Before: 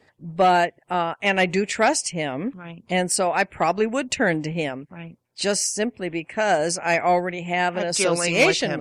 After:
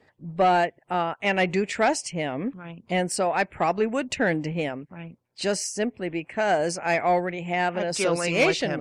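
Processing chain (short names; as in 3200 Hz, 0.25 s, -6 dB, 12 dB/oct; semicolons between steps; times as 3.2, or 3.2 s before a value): high shelf 4300 Hz -7.5 dB; in parallel at -3 dB: soft clip -15 dBFS, distortion -16 dB; on the sum: gain -6 dB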